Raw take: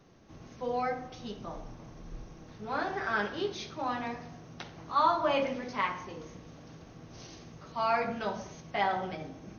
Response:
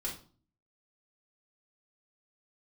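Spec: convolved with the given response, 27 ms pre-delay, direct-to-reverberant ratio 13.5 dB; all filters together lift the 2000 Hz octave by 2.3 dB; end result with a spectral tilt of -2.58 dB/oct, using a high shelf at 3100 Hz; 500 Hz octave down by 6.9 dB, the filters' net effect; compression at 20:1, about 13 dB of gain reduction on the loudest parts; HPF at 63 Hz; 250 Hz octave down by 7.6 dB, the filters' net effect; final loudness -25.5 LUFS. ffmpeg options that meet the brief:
-filter_complex "[0:a]highpass=63,equalizer=f=250:t=o:g=-7.5,equalizer=f=500:t=o:g=-7.5,equalizer=f=2k:t=o:g=6,highshelf=f=3.1k:g=-7.5,acompressor=threshold=-35dB:ratio=20,asplit=2[a][b];[1:a]atrim=start_sample=2205,adelay=27[c];[b][c]afir=irnorm=-1:irlink=0,volume=-15dB[d];[a][d]amix=inputs=2:normalize=0,volume=16.5dB"

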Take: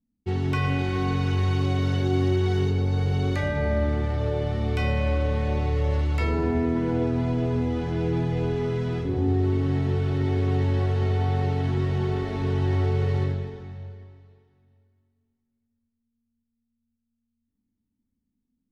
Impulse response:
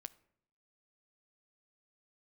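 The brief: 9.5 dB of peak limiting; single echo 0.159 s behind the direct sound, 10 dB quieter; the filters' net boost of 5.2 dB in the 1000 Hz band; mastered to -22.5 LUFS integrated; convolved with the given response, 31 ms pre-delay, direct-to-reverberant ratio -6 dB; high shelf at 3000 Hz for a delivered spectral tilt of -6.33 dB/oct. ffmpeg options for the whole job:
-filter_complex "[0:a]equalizer=f=1k:t=o:g=6,highshelf=f=3k:g=7.5,alimiter=limit=-20.5dB:level=0:latency=1,aecho=1:1:159:0.316,asplit=2[a][b];[1:a]atrim=start_sample=2205,adelay=31[c];[b][c]afir=irnorm=-1:irlink=0,volume=11.5dB[d];[a][d]amix=inputs=2:normalize=0,volume=-1.5dB"

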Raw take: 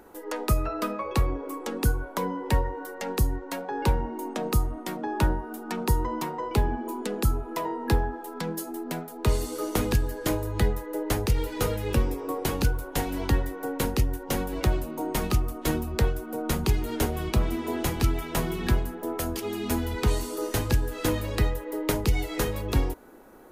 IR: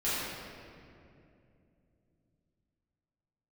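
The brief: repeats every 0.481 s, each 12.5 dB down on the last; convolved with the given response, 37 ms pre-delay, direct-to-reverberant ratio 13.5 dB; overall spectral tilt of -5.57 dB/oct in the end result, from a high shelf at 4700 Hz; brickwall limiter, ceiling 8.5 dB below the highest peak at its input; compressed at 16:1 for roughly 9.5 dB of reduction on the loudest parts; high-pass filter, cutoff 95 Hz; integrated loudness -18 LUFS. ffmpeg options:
-filter_complex "[0:a]highpass=95,highshelf=f=4.7k:g=-6.5,acompressor=threshold=-30dB:ratio=16,alimiter=level_in=1.5dB:limit=-24dB:level=0:latency=1,volume=-1.5dB,aecho=1:1:481|962|1443:0.237|0.0569|0.0137,asplit=2[a][b];[1:a]atrim=start_sample=2205,adelay=37[c];[b][c]afir=irnorm=-1:irlink=0,volume=-23dB[d];[a][d]amix=inputs=2:normalize=0,volume=18.5dB"

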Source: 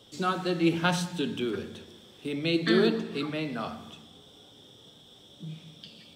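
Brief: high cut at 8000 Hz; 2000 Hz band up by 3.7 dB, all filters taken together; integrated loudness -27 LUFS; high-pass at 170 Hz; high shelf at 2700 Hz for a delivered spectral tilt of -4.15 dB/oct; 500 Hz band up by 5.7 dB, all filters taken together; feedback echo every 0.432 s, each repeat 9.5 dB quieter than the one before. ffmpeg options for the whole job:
-af "highpass=170,lowpass=8k,equalizer=f=500:t=o:g=8,equalizer=f=2k:t=o:g=8,highshelf=f=2.7k:g=-8,aecho=1:1:432|864|1296|1728:0.335|0.111|0.0365|0.012,volume=-1.5dB"

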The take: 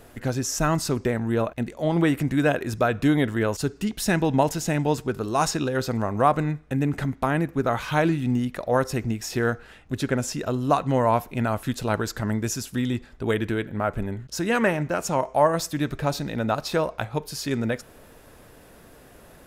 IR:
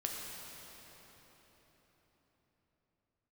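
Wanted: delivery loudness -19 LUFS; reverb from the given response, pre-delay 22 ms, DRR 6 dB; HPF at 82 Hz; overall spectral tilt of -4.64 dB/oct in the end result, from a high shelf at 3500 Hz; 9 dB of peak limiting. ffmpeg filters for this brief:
-filter_complex "[0:a]highpass=82,highshelf=f=3.5k:g=6,alimiter=limit=-14.5dB:level=0:latency=1,asplit=2[a][b];[1:a]atrim=start_sample=2205,adelay=22[c];[b][c]afir=irnorm=-1:irlink=0,volume=-8dB[d];[a][d]amix=inputs=2:normalize=0,volume=6.5dB"

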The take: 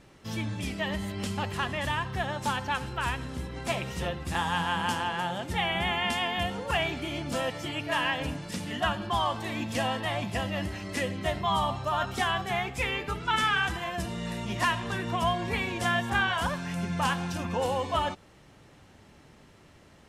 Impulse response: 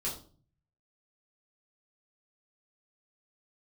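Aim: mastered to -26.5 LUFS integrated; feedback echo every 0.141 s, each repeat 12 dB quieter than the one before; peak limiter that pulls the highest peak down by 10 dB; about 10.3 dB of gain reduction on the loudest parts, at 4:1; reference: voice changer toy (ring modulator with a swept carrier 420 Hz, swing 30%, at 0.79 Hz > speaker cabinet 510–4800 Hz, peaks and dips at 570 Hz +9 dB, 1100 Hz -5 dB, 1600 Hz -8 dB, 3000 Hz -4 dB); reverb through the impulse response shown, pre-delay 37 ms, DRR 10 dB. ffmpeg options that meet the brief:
-filter_complex "[0:a]acompressor=threshold=-35dB:ratio=4,alimiter=level_in=9dB:limit=-24dB:level=0:latency=1,volume=-9dB,aecho=1:1:141|282|423:0.251|0.0628|0.0157,asplit=2[a][b];[1:a]atrim=start_sample=2205,adelay=37[c];[b][c]afir=irnorm=-1:irlink=0,volume=-13dB[d];[a][d]amix=inputs=2:normalize=0,aeval=exprs='val(0)*sin(2*PI*420*n/s+420*0.3/0.79*sin(2*PI*0.79*n/s))':c=same,highpass=510,equalizer=f=570:t=q:w=4:g=9,equalizer=f=1.1k:t=q:w=4:g=-5,equalizer=f=1.6k:t=q:w=4:g=-8,equalizer=f=3k:t=q:w=4:g=-4,lowpass=f=4.8k:w=0.5412,lowpass=f=4.8k:w=1.3066,volume=19dB"

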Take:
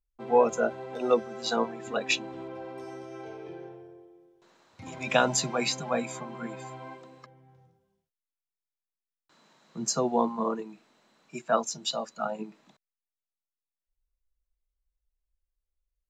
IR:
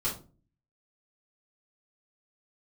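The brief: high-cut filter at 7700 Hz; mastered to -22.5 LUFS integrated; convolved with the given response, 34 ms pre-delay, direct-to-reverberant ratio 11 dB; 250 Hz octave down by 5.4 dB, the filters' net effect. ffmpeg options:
-filter_complex "[0:a]lowpass=7.7k,equalizer=f=250:t=o:g=-6.5,asplit=2[a][b];[1:a]atrim=start_sample=2205,adelay=34[c];[b][c]afir=irnorm=-1:irlink=0,volume=-17dB[d];[a][d]amix=inputs=2:normalize=0,volume=7dB"

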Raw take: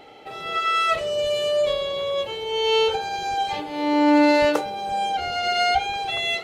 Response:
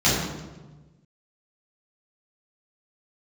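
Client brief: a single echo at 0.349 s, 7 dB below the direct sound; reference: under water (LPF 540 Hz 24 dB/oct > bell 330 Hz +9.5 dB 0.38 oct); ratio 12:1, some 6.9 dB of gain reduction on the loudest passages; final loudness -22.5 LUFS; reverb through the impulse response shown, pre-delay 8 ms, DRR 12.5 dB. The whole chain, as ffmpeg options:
-filter_complex "[0:a]acompressor=threshold=-20dB:ratio=12,aecho=1:1:349:0.447,asplit=2[a][b];[1:a]atrim=start_sample=2205,adelay=8[c];[b][c]afir=irnorm=-1:irlink=0,volume=-31dB[d];[a][d]amix=inputs=2:normalize=0,lowpass=f=540:w=0.5412,lowpass=f=540:w=1.3066,equalizer=f=330:t=o:w=0.38:g=9.5,volume=1dB"

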